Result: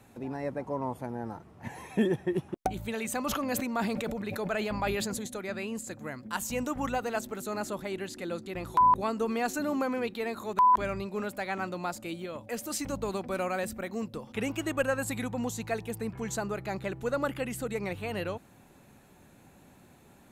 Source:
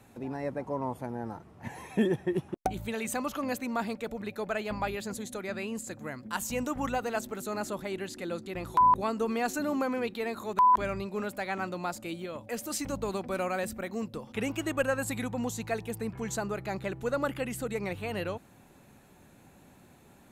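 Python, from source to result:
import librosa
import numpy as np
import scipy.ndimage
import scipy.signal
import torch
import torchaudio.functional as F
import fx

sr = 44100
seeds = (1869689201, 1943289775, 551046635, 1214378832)

y = fx.sustainer(x, sr, db_per_s=22.0, at=(3.24, 5.27))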